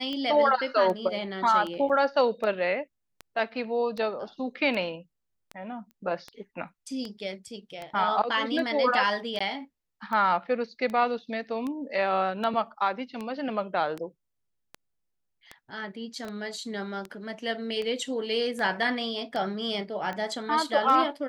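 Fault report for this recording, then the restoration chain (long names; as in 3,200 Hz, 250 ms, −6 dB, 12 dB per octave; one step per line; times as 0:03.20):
scratch tick 78 rpm −22 dBFS
0:01.89–0:01.90: drop-out 6.9 ms
0:05.91: click −36 dBFS
0:09.39–0:09.40: drop-out 15 ms
0:16.25: click −28 dBFS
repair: click removal
repair the gap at 0:01.89, 6.9 ms
repair the gap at 0:09.39, 15 ms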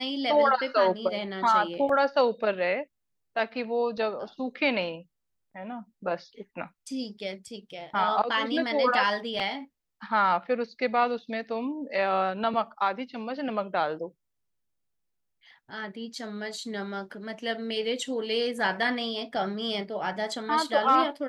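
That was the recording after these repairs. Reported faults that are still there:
0:16.25: click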